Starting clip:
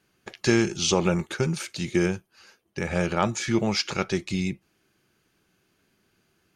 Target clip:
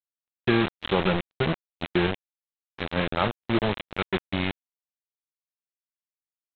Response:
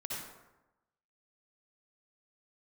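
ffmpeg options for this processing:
-af "aresample=8000,acrusher=bits=3:mix=0:aa=0.000001,aresample=44100,agate=range=0.00141:threshold=0.0282:ratio=16:detection=peak,volume=0.841"

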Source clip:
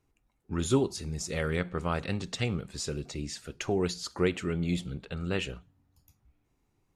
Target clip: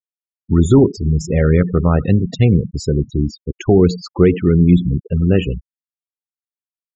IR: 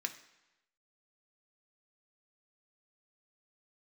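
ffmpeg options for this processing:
-filter_complex "[0:a]asplit=2[s0][s1];[1:a]atrim=start_sample=2205,afade=t=out:st=0.13:d=0.01,atrim=end_sample=6174,adelay=92[s2];[s1][s2]afir=irnorm=-1:irlink=0,volume=0.168[s3];[s0][s3]amix=inputs=2:normalize=0,apsyclip=10.6,afftfilt=real='re*gte(hypot(re,im),0.316)':imag='im*gte(hypot(re,im),0.316)':win_size=1024:overlap=0.75,tiltshelf=f=650:g=7,volume=0.447"

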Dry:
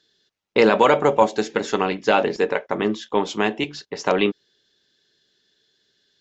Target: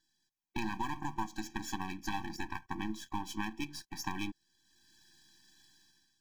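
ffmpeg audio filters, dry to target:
-af "aeval=exprs='if(lt(val(0),0),0.251*val(0),val(0))':c=same,dynaudnorm=f=100:g=9:m=5.62,aexciter=amount=2.2:drive=4.8:freq=5300,acompressor=threshold=0.0891:ratio=3,afftfilt=real='re*eq(mod(floor(b*sr/1024/380),2),0)':imag='im*eq(mod(floor(b*sr/1024/380),2),0)':win_size=1024:overlap=0.75,volume=0.376"

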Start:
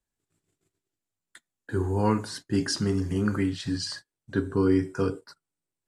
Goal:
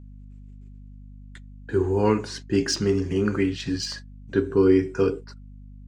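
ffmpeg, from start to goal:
-af "adynamicsmooth=sensitivity=3:basefreq=6200,equalizer=f=400:t=o:w=0.67:g=8,equalizer=f=2500:t=o:w=0.67:g=9,equalizer=f=6300:t=o:w=0.67:g=7,aeval=exprs='val(0)+0.00794*(sin(2*PI*50*n/s)+sin(2*PI*2*50*n/s)/2+sin(2*PI*3*50*n/s)/3+sin(2*PI*4*50*n/s)/4+sin(2*PI*5*50*n/s)/5)':c=same"

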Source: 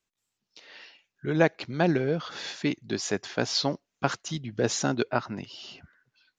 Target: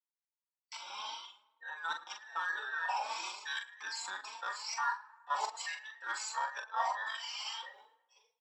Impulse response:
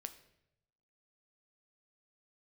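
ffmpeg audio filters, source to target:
-filter_complex "[0:a]afftfilt=real='real(if(between(b,1,1012),(2*floor((b-1)/92)+1)*92-b,b),0)':imag='imag(if(between(b,1,1012),(2*floor((b-1)/92)+1)*92-b,b),0)*if(between(b,1,1012),-1,1)':win_size=2048:overlap=0.75,agate=range=0.0224:threshold=0.00141:ratio=3:detection=peak,equalizer=f=1700:t=o:w=0.57:g=-9.5,areverse,acompressor=threshold=0.00631:ratio=8,areverse,aphaser=in_gain=1:out_gain=1:delay=3.8:decay=0.31:speed=0.64:type=triangular,atempo=0.76,highpass=f=910:t=q:w=11,asplit=2[s0][s1];[s1]volume=50.1,asoftclip=hard,volume=0.02,volume=0.316[s2];[s0][s2]amix=inputs=2:normalize=0,asplit=2[s3][s4];[s4]adelay=42,volume=0.473[s5];[s3][s5]amix=inputs=2:normalize=0,asplit=2[s6][s7];[s7]adelay=108,lowpass=f=2700:p=1,volume=0.15,asplit=2[s8][s9];[s9]adelay=108,lowpass=f=2700:p=1,volume=0.54,asplit=2[s10][s11];[s11]adelay=108,lowpass=f=2700:p=1,volume=0.54,asplit=2[s12][s13];[s13]adelay=108,lowpass=f=2700:p=1,volume=0.54,asplit=2[s14][s15];[s15]adelay=108,lowpass=f=2700:p=1,volume=0.54[s16];[s6][s8][s10][s12][s14][s16]amix=inputs=6:normalize=0,asplit=2[s17][s18];[s18]adelay=4,afreqshift=2.5[s19];[s17][s19]amix=inputs=2:normalize=1,volume=1.78"

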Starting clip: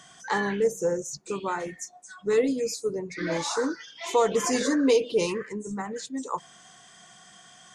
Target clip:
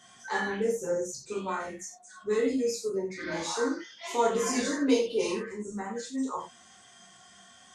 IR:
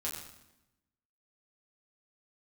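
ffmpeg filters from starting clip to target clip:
-filter_complex "[0:a]flanger=delay=5.7:depth=6.1:regen=-42:speed=1:shape=sinusoidal[s0];[1:a]atrim=start_sample=2205,afade=t=out:st=0.15:d=0.01,atrim=end_sample=7056[s1];[s0][s1]afir=irnorm=-1:irlink=0"

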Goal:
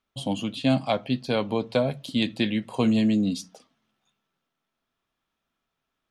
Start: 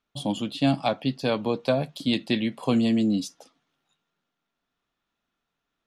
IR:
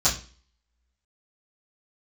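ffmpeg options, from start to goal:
-filter_complex "[0:a]asplit=2[s0][s1];[s1]tiltshelf=f=970:g=7[s2];[1:a]atrim=start_sample=2205,asetrate=41895,aresample=44100[s3];[s2][s3]afir=irnorm=-1:irlink=0,volume=0.0158[s4];[s0][s4]amix=inputs=2:normalize=0,asetrate=42336,aresample=44100"

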